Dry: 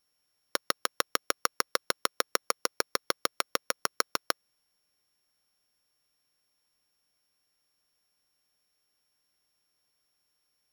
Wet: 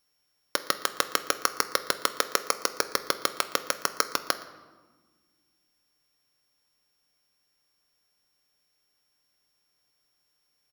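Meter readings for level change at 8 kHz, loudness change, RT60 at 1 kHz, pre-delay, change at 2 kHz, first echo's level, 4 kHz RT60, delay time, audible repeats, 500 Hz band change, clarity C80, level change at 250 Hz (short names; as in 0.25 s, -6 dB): +3.0 dB, +3.0 dB, 1.4 s, 7 ms, +3.0 dB, -22.0 dB, 0.85 s, 0.117 s, 1, +3.0 dB, 14.5 dB, +3.5 dB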